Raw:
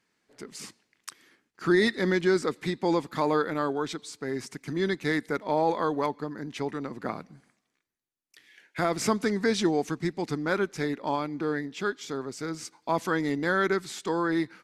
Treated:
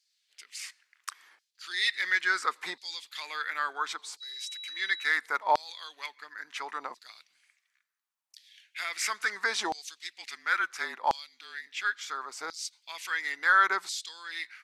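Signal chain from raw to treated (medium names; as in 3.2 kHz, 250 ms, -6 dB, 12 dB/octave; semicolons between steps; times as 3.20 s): 10.10–11.67 s: frequency shift -33 Hz; LFO high-pass saw down 0.72 Hz 800–4700 Hz; 4.20–5.09 s: whistle 3.9 kHz -39 dBFS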